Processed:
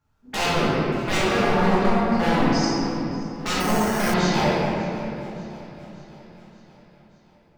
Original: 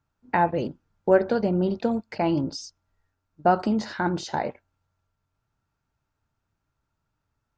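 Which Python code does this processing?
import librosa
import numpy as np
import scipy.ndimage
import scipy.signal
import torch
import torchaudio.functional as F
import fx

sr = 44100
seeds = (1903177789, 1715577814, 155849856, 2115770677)

p1 = fx.peak_eq(x, sr, hz=1700.0, db=-12.0, octaves=1.5, at=(1.82, 2.23))
p2 = 10.0 ** (-25.0 / 20.0) * (np.abs((p1 / 10.0 ** (-25.0 / 20.0) + 3.0) % 4.0 - 2.0) - 1.0)
p3 = p2 + fx.echo_feedback(p2, sr, ms=582, feedback_pct=58, wet_db=-20, dry=0)
p4 = fx.room_shoebox(p3, sr, seeds[0], volume_m3=150.0, walls='hard', distance_m=1.4)
y = fx.resample_bad(p4, sr, factor=6, down='filtered', up='hold', at=(3.6, 4.14))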